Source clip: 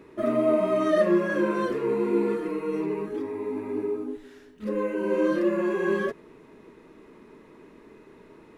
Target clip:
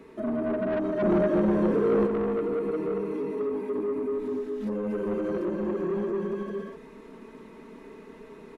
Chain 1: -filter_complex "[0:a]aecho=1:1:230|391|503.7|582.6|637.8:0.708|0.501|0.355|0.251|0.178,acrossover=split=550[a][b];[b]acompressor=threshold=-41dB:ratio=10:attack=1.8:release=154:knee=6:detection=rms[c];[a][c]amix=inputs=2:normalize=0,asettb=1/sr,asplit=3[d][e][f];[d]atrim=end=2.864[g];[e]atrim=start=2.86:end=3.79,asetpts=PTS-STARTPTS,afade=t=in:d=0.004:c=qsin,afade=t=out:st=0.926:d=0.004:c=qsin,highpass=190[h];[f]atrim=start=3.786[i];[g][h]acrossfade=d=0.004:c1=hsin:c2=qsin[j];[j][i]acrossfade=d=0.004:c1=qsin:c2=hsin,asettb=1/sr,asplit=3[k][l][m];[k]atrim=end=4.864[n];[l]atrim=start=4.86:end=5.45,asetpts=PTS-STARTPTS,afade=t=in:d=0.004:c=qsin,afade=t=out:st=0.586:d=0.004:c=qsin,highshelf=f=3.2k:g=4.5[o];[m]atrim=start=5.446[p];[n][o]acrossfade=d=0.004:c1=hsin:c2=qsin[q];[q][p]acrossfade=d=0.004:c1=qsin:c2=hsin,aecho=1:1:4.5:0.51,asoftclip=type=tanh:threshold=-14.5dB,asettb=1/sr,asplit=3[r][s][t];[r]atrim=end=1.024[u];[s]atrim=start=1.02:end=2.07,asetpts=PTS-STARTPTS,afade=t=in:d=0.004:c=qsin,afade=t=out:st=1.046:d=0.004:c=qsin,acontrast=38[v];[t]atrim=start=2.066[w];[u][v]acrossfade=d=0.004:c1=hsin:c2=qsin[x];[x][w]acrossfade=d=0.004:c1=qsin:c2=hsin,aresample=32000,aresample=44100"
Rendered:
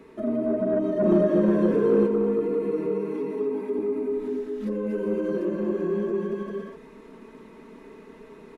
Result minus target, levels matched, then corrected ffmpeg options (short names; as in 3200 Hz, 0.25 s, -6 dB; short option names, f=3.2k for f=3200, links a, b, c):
soft clip: distortion -11 dB
-filter_complex "[0:a]aecho=1:1:230|391|503.7|582.6|637.8:0.708|0.501|0.355|0.251|0.178,acrossover=split=550[a][b];[b]acompressor=threshold=-41dB:ratio=10:attack=1.8:release=154:knee=6:detection=rms[c];[a][c]amix=inputs=2:normalize=0,asettb=1/sr,asplit=3[d][e][f];[d]atrim=end=2.864[g];[e]atrim=start=2.86:end=3.79,asetpts=PTS-STARTPTS,afade=t=in:d=0.004:c=qsin,afade=t=out:st=0.926:d=0.004:c=qsin,highpass=190[h];[f]atrim=start=3.786[i];[g][h]acrossfade=d=0.004:c1=hsin:c2=qsin[j];[j][i]acrossfade=d=0.004:c1=qsin:c2=hsin,asettb=1/sr,asplit=3[k][l][m];[k]atrim=end=4.864[n];[l]atrim=start=4.86:end=5.45,asetpts=PTS-STARTPTS,afade=t=in:d=0.004:c=qsin,afade=t=out:st=0.586:d=0.004:c=qsin,highshelf=f=3.2k:g=4.5[o];[m]atrim=start=5.446[p];[n][o]acrossfade=d=0.004:c1=hsin:c2=qsin[q];[q][p]acrossfade=d=0.004:c1=qsin:c2=hsin,aecho=1:1:4.5:0.51,asoftclip=type=tanh:threshold=-23.5dB,asettb=1/sr,asplit=3[r][s][t];[r]atrim=end=1.024[u];[s]atrim=start=1.02:end=2.07,asetpts=PTS-STARTPTS,afade=t=in:d=0.004:c=qsin,afade=t=out:st=1.046:d=0.004:c=qsin,acontrast=38[v];[t]atrim=start=2.066[w];[u][v]acrossfade=d=0.004:c1=hsin:c2=qsin[x];[x][w]acrossfade=d=0.004:c1=qsin:c2=hsin,aresample=32000,aresample=44100"